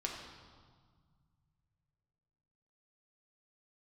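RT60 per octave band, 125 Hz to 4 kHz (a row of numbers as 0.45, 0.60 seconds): 3.5, 2.5, 1.6, 1.8, 1.3, 1.4 seconds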